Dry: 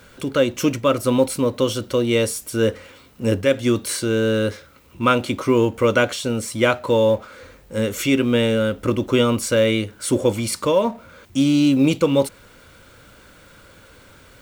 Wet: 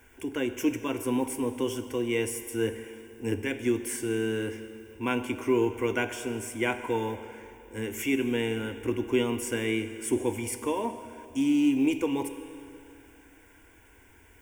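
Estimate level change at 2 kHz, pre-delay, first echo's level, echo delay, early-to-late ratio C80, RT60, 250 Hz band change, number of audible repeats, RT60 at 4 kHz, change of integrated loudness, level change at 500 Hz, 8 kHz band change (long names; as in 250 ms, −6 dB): −8.0 dB, 13 ms, no echo audible, no echo audible, 10.5 dB, 2.8 s, −8.0 dB, no echo audible, 2.6 s, −9.5 dB, −11.0 dB, −8.5 dB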